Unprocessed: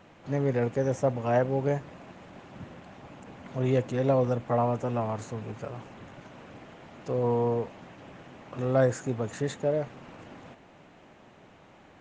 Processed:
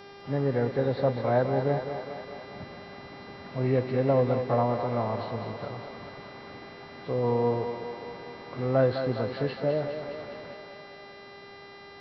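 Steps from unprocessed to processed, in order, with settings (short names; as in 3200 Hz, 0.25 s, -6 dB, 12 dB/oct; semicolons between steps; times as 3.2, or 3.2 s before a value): nonlinear frequency compression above 1500 Hz 1.5:1; buzz 400 Hz, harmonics 14, -48 dBFS -5 dB/oct; thinning echo 0.206 s, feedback 71%, high-pass 280 Hz, level -7 dB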